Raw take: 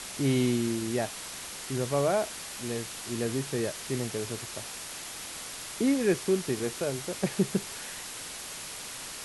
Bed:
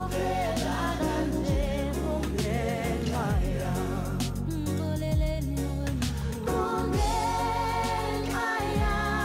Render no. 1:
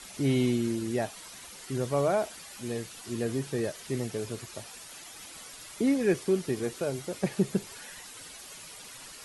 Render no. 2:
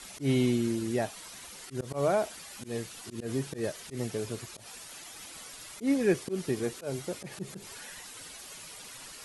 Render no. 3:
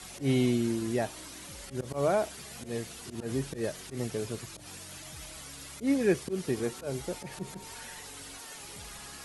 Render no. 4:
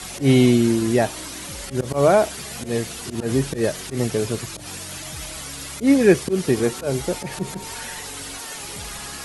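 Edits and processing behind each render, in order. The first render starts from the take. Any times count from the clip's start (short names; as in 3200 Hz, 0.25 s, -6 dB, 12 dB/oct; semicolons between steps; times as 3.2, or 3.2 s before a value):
denoiser 10 dB, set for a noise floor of -41 dBFS
auto swell 0.111 s
add bed -24 dB
gain +11.5 dB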